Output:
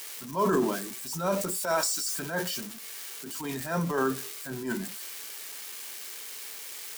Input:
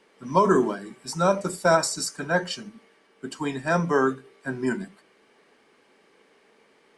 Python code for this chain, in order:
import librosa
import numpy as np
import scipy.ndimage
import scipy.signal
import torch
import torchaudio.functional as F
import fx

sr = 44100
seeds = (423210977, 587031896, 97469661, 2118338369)

y = x + 0.5 * 10.0 ** (-24.5 / 20.0) * np.diff(np.sign(x), prepend=np.sign(x[:1]))
y = fx.highpass(y, sr, hz=fx.line((1.53, 280.0), (2.1, 1100.0)), slope=6, at=(1.53, 2.1), fade=0.02)
y = fx.transient(y, sr, attack_db=-10, sustain_db=5)
y = y * librosa.db_to_amplitude(-4.5)